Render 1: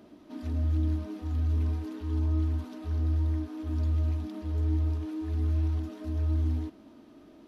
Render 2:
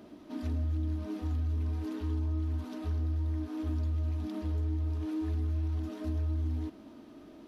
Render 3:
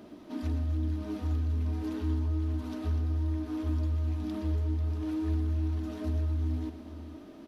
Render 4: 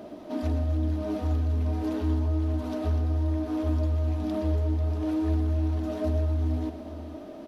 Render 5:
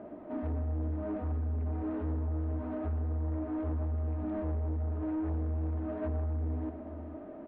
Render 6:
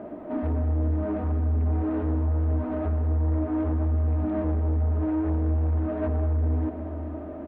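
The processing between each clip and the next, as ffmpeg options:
-af "acompressor=threshold=-31dB:ratio=6,volume=2dB"
-af "aecho=1:1:120|244|493:0.282|0.211|0.2,volume=2dB"
-af "equalizer=f=630:w=1.8:g=10.5,volume=3.5dB"
-af "lowpass=f=2k:w=0.5412,lowpass=f=2k:w=1.3066,aresample=11025,asoftclip=type=tanh:threshold=-25dB,aresample=44100,volume=-3.5dB"
-af "aecho=1:1:203|406|609|812|1015:0.224|0.119|0.0629|0.0333|0.0177,volume=7.5dB"

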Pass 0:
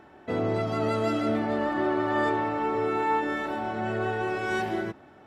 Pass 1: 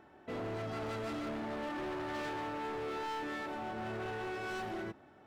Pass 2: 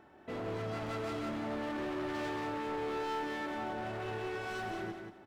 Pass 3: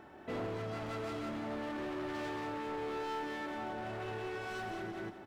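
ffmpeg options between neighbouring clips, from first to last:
-af "asoftclip=type=hard:threshold=-29.5dB,volume=-7.5dB"
-af "aecho=1:1:183|366|549:0.501|0.115|0.0265"
-af "alimiter=level_in=16dB:limit=-24dB:level=0:latency=1:release=82,volume=-16dB,volume=5dB"

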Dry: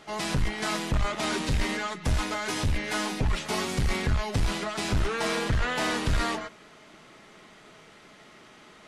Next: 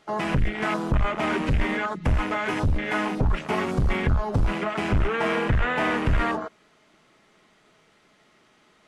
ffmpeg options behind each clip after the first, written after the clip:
-filter_complex "[0:a]afwtdn=0.0224,asplit=2[a][b];[b]acompressor=threshold=-35dB:ratio=6,volume=1.5dB[c];[a][c]amix=inputs=2:normalize=0,volume=1.5dB"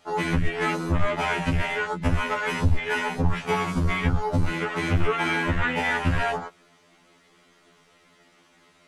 -af "highshelf=f=6.2k:g=4.5,afftfilt=real='re*2*eq(mod(b,4),0)':imag='im*2*eq(mod(b,4),0)':win_size=2048:overlap=0.75,volume=3.5dB"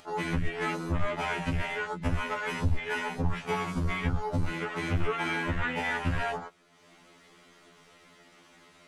-af "acompressor=mode=upward:threshold=-42dB:ratio=2.5,volume=-6dB"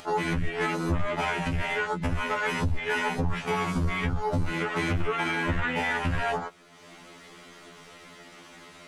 -af "alimiter=level_in=2.5dB:limit=-24dB:level=0:latency=1:release=256,volume=-2.5dB,volume=8.5dB"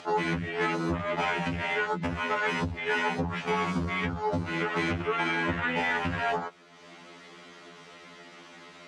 -af "highpass=130,lowpass=6k"

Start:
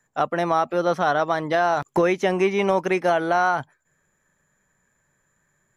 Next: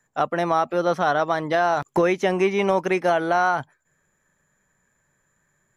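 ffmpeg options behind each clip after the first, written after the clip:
-af anull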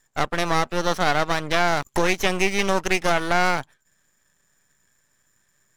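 -af "crystalizer=i=6.5:c=0,adynamicsmooth=sensitivity=7.5:basefreq=6.3k,aeval=exprs='max(val(0),0)':c=same"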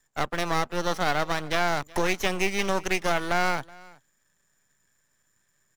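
-filter_complex "[0:a]acrossover=split=120|1600[a][b][c];[c]acrusher=bits=4:mode=log:mix=0:aa=0.000001[d];[a][b][d]amix=inputs=3:normalize=0,aecho=1:1:373:0.0668,volume=-4.5dB"

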